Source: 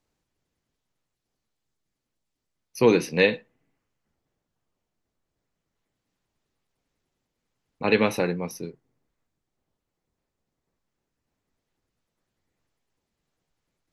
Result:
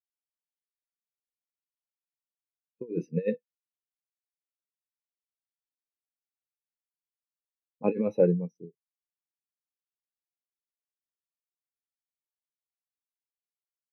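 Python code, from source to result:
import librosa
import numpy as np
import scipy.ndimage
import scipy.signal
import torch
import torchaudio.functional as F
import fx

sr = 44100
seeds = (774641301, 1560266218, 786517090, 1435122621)

y = fx.env_lowpass(x, sr, base_hz=870.0, full_db=-25.0)
y = fx.over_compress(y, sr, threshold_db=-22.0, ratio=-0.5)
y = fx.spectral_expand(y, sr, expansion=2.5)
y = F.gain(torch.from_numpy(y), -3.0).numpy()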